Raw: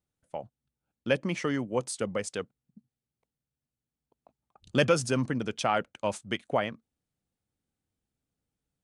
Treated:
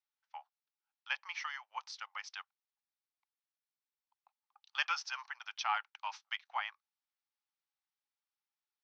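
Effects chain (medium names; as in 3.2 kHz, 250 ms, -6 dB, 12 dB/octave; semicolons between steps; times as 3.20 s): Chebyshev band-pass 820–5800 Hz, order 5; trim -3.5 dB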